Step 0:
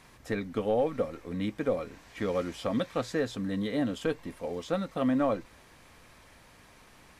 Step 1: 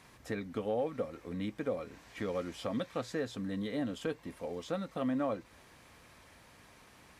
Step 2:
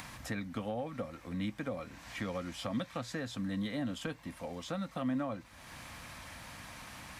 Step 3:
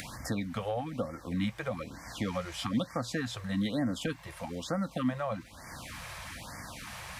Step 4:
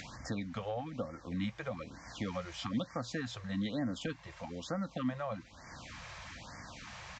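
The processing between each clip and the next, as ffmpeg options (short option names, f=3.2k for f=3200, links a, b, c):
-filter_complex "[0:a]asplit=2[a][b];[b]acompressor=threshold=-37dB:ratio=6,volume=-0.5dB[c];[a][c]amix=inputs=2:normalize=0,highpass=47,volume=-8dB"
-filter_complex "[0:a]acompressor=mode=upward:threshold=-41dB:ratio=2.5,equalizer=f=410:w=2.6:g=-13.5,acrossover=split=250[a][b];[b]acompressor=threshold=-38dB:ratio=6[c];[a][c]amix=inputs=2:normalize=0,volume=3dB"
-af "afftfilt=real='re*(1-between(b*sr/1024,230*pow(3300/230,0.5+0.5*sin(2*PI*1.1*pts/sr))/1.41,230*pow(3300/230,0.5+0.5*sin(2*PI*1.1*pts/sr))*1.41))':imag='im*(1-between(b*sr/1024,230*pow(3300/230,0.5+0.5*sin(2*PI*1.1*pts/sr))/1.41,230*pow(3300/230,0.5+0.5*sin(2*PI*1.1*pts/sr))*1.41))':win_size=1024:overlap=0.75,volume=5.5dB"
-af "aresample=16000,aresample=44100,volume=-4.5dB"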